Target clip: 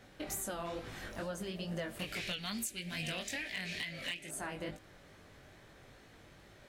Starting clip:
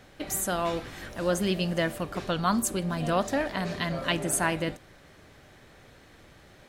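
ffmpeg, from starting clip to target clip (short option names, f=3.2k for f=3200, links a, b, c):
-filter_complex "[0:a]asettb=1/sr,asplit=3[a][b][c];[a]atrim=end=1.994[d];[b]atrim=start=1.99:end=4.29,asetpts=PTS-STARTPTS,afade=t=in:d=0.004:c=qsin,afade=t=out:st=2.296:d=0.004:c=qsin,highshelf=f=1.6k:t=q:w=3:g=12[e];[c]atrim=start=4.286[f];[d][e]acrossfade=d=0.004:c1=hsin:c2=qsin[g];[g][f]acrossfade=d=0.004:c1=qsin:c2=hsin,acompressor=threshold=-31dB:ratio=16,flanger=delay=18:depth=5:speed=2.3,asoftclip=type=hard:threshold=-28.5dB,volume=-1.5dB"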